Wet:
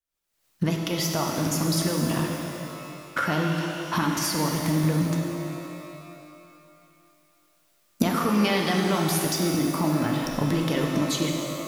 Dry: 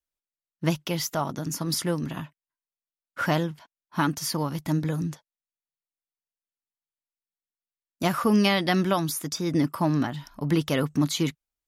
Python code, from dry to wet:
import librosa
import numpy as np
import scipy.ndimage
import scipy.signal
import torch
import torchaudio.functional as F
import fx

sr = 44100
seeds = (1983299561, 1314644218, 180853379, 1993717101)

y = fx.recorder_agc(x, sr, target_db=-15.5, rise_db_per_s=66.0, max_gain_db=30)
y = fx.rev_shimmer(y, sr, seeds[0], rt60_s=2.6, semitones=12, shimmer_db=-8, drr_db=0.5)
y = y * 10.0 ** (-4.0 / 20.0)